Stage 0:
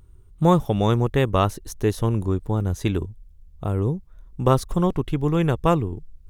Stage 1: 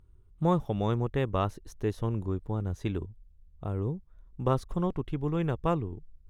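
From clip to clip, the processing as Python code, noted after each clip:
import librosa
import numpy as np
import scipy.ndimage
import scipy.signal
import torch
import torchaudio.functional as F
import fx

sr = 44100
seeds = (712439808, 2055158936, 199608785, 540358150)

y = fx.high_shelf(x, sr, hz=5600.0, db=-12.0)
y = F.gain(torch.from_numpy(y), -8.5).numpy()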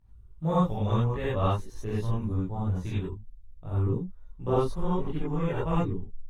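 y = fx.chorus_voices(x, sr, voices=4, hz=0.75, base_ms=18, depth_ms=1.1, mix_pct=55)
y = fx.rev_gated(y, sr, seeds[0], gate_ms=110, shape='rising', drr_db=-7.5)
y = F.gain(torch.from_numpy(y), -4.0).numpy()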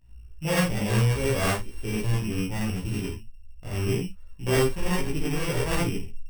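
y = np.r_[np.sort(x[:len(x) // 16 * 16].reshape(-1, 16), axis=1).ravel(), x[len(x) // 16 * 16:]]
y = 10.0 ** (-18.5 / 20.0) * np.tanh(y / 10.0 ** (-18.5 / 20.0))
y = fx.room_early_taps(y, sr, ms=(15, 51), db=(-3.0, -10.0))
y = F.gain(torch.from_numpy(y), 2.5).numpy()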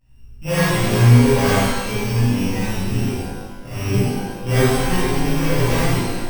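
y = fx.rev_shimmer(x, sr, seeds[1], rt60_s=1.3, semitones=12, shimmer_db=-8, drr_db=-8.5)
y = F.gain(torch.from_numpy(y), -2.5).numpy()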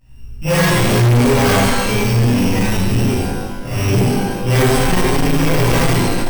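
y = 10.0 ** (-18.5 / 20.0) * np.tanh(x / 10.0 ** (-18.5 / 20.0))
y = F.gain(torch.from_numpy(y), 9.0).numpy()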